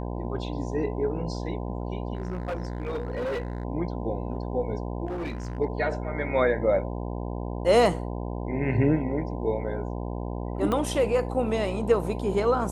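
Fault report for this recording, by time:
buzz 60 Hz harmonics 17 -32 dBFS
2.15–3.65 s: clipped -26.5 dBFS
5.06–5.59 s: clipped -28.5 dBFS
10.72 s: pop -15 dBFS

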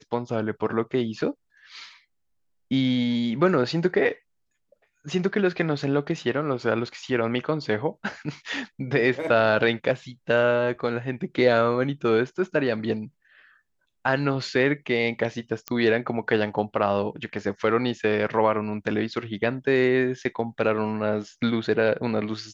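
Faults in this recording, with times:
15.68 s: pop -13 dBFS

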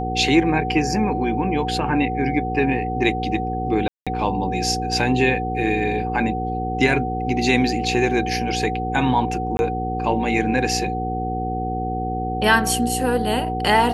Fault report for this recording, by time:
hum 60 Hz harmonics 8 -27 dBFS
whine 750 Hz -25 dBFS
3.88–4.07 s: dropout 186 ms
9.57–9.59 s: dropout 21 ms

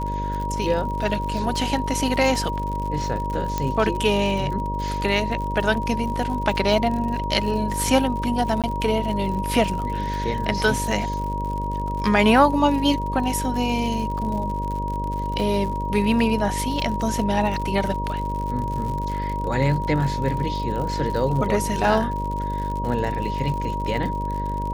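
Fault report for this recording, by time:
buzz 50 Hz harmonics 12 -28 dBFS
crackle 76 per s -29 dBFS
whine 950 Hz -27 dBFS
3.58 s: pop -10 dBFS
8.62–8.64 s: dropout 17 ms

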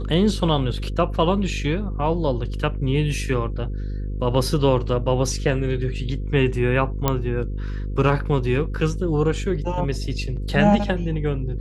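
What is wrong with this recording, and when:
buzz 50 Hz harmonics 10 -27 dBFS
7.08 s: pop -4 dBFS

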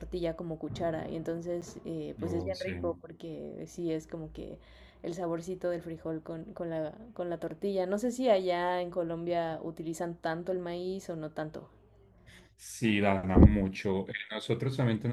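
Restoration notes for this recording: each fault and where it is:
1.61–1.62 s: dropout 8.3 ms

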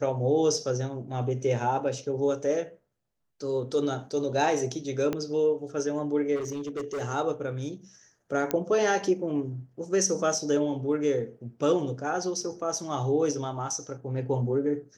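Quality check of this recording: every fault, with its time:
5.13 s: pop -16 dBFS
6.35–7.02 s: clipped -29 dBFS
8.51 s: pop -11 dBFS

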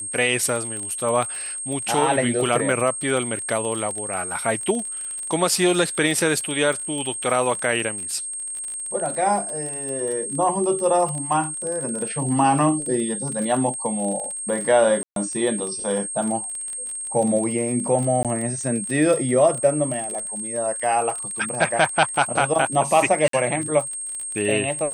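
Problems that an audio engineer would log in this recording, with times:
crackle 33 per s -27 dBFS
whine 8.5 kHz -28 dBFS
15.03–15.16 s: dropout 132 ms
18.23–18.25 s: dropout 17 ms
23.28–23.33 s: dropout 53 ms

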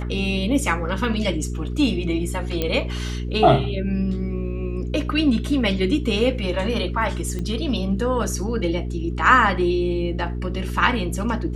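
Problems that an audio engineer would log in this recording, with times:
hum 60 Hz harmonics 7 -27 dBFS
2.62 s: pop -9 dBFS
7.39 s: pop -18 dBFS

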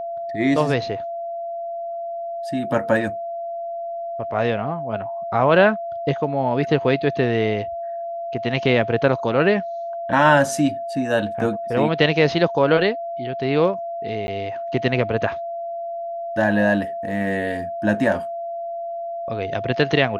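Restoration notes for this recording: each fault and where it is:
whine 680 Hz -26 dBFS
14.27–14.28 s: dropout 10 ms

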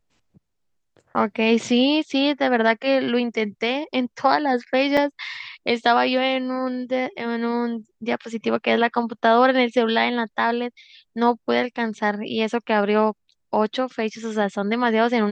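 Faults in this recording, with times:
4.97 s: dropout 4.1 ms

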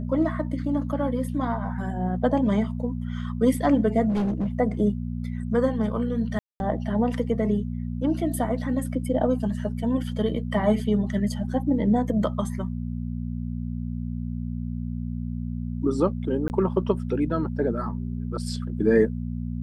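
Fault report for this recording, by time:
hum 60 Hz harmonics 4 -30 dBFS
4.09–4.48 s: clipped -21.5 dBFS
6.39–6.60 s: dropout 211 ms
16.48–16.50 s: dropout 19 ms

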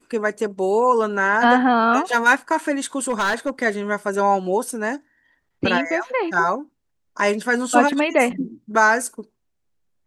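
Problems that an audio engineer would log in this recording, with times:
3.10–3.50 s: clipped -16.5 dBFS

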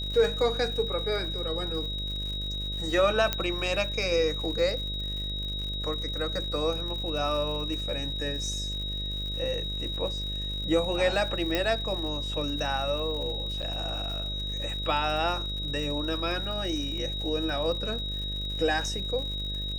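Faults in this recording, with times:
buzz 50 Hz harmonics 13 -35 dBFS
crackle 110 per s -36 dBFS
whine 3.8 kHz -33 dBFS
3.33 s: pop -10 dBFS
11.55 s: pop -12 dBFS
13.62–13.63 s: dropout 7 ms

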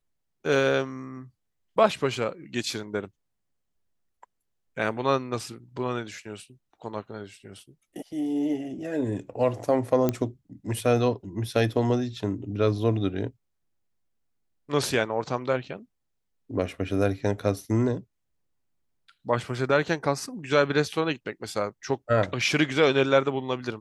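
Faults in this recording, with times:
10.09 s: pop -11 dBFS

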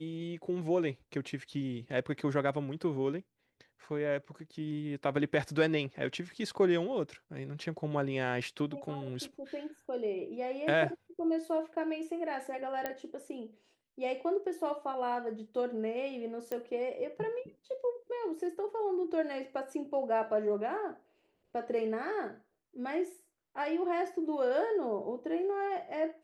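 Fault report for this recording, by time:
12.86 s: pop -20 dBFS
16.52 s: pop -22 dBFS

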